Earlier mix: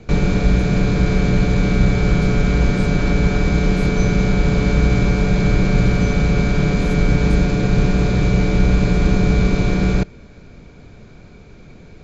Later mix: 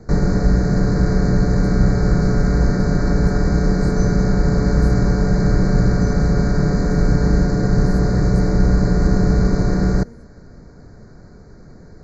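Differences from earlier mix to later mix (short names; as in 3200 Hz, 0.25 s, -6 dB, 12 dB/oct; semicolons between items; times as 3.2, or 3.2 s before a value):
speech: entry +1.05 s; master: add Chebyshev band-stop 1900–4400 Hz, order 3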